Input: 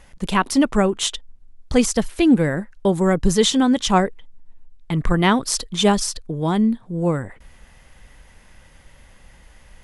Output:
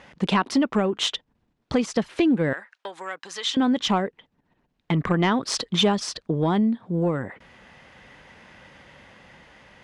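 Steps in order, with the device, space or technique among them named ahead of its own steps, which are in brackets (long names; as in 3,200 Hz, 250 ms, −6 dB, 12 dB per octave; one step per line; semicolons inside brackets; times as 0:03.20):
AM radio (band-pass filter 150–3,900 Hz; downward compressor 6 to 1, threshold −22 dBFS, peak gain reduction 11.5 dB; soft clipping −13.5 dBFS, distortion −25 dB; amplitude tremolo 0.35 Hz, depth 19%)
0:02.53–0:03.57: high-pass filter 1,200 Hz 12 dB per octave
level +5.5 dB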